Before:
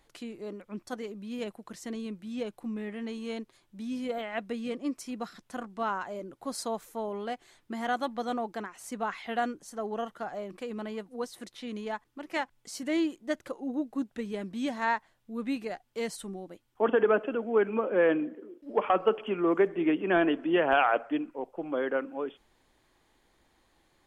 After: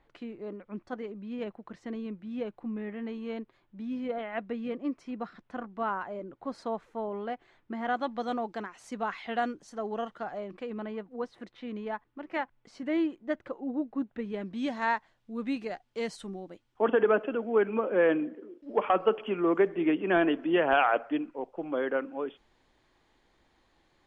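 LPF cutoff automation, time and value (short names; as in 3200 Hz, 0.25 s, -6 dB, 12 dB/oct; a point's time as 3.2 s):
7.83 s 2300 Hz
8.24 s 5200 Hz
10.01 s 5200 Hz
10.95 s 2300 Hz
14.19 s 2300 Hz
14.76 s 5700 Hz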